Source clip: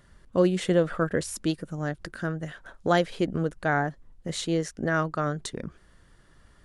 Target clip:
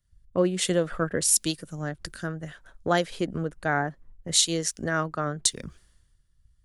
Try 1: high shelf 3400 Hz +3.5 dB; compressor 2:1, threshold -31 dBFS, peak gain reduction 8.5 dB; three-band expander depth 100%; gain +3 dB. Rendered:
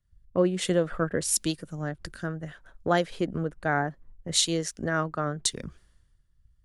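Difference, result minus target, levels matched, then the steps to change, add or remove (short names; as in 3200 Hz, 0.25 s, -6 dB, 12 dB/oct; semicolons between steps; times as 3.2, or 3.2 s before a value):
8000 Hz band -3.0 dB
change: high shelf 3400 Hz +11 dB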